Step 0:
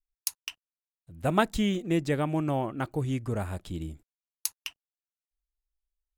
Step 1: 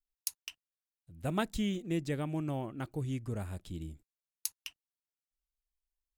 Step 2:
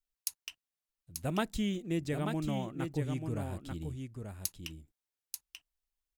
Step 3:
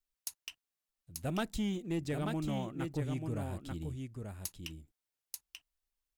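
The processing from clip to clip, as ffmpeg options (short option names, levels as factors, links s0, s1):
-af "equalizer=f=940:t=o:w=2.4:g=-6,volume=0.562"
-af "aecho=1:1:887:0.501"
-af "asoftclip=type=tanh:threshold=0.0473"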